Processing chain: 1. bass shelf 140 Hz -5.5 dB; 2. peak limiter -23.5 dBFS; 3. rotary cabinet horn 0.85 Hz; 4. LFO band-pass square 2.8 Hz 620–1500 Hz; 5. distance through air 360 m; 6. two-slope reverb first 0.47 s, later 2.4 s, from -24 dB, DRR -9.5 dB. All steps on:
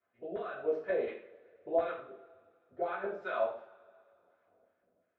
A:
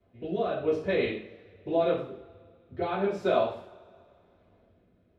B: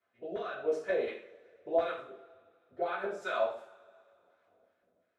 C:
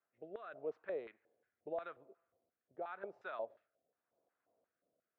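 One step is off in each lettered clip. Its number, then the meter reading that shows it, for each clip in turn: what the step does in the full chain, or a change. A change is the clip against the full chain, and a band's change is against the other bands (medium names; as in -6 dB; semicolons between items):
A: 4, 250 Hz band +7.0 dB; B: 5, 2 kHz band +2.0 dB; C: 6, momentary loudness spread change -7 LU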